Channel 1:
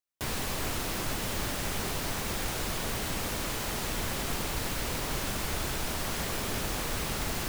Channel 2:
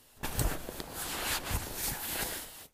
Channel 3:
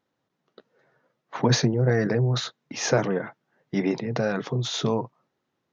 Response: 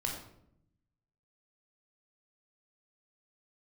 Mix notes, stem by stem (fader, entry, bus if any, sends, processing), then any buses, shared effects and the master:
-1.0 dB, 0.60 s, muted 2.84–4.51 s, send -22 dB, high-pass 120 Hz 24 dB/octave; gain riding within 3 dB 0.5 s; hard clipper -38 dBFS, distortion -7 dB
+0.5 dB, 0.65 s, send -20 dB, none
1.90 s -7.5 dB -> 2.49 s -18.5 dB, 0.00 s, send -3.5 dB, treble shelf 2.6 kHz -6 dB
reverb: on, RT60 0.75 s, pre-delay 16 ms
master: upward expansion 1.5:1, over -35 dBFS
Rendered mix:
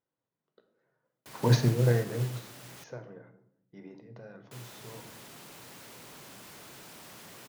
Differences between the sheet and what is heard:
stem 1: entry 0.60 s -> 1.05 s; stem 2: muted

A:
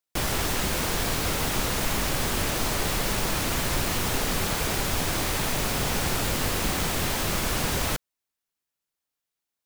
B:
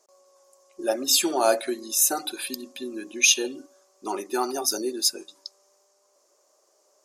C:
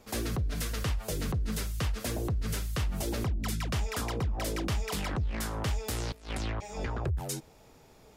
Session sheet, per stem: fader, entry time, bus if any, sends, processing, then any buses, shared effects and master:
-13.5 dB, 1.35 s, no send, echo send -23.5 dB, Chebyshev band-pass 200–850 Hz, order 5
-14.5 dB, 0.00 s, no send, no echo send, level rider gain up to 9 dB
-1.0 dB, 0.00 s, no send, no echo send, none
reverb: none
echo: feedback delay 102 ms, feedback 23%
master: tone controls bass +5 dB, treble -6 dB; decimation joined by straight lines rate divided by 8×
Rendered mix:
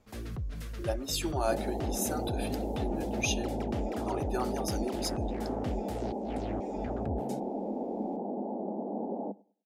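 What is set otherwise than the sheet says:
stem A -13.5 dB -> -2.5 dB; stem C -1.0 dB -> -10.0 dB; master: missing decimation joined by straight lines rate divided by 8×

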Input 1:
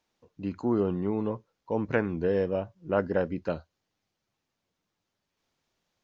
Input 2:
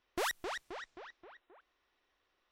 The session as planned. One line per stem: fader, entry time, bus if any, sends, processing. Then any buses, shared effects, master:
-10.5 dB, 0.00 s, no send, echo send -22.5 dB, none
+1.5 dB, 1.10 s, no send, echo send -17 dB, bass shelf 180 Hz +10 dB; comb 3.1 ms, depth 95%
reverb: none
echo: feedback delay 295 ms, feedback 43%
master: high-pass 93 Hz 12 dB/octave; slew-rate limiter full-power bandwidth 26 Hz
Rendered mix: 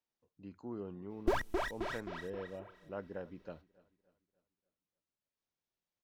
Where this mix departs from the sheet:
stem 1 -10.5 dB -> -17.0 dB; master: missing high-pass 93 Hz 12 dB/octave

